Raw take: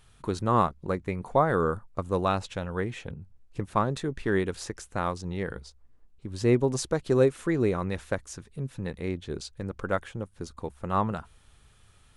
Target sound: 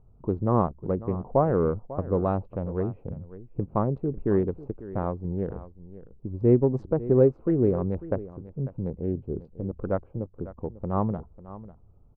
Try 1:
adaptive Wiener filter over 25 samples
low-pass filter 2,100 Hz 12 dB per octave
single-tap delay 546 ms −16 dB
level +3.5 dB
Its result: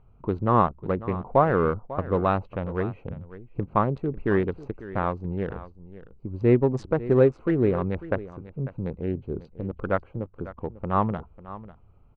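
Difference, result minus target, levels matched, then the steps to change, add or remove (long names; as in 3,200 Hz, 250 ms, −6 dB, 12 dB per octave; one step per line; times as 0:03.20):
2,000 Hz band +12.0 dB
change: low-pass filter 700 Hz 12 dB per octave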